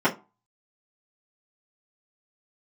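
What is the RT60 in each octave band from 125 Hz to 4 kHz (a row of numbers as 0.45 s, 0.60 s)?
0.30 s, 0.30 s, 0.25 s, 0.30 s, 0.20 s, 0.15 s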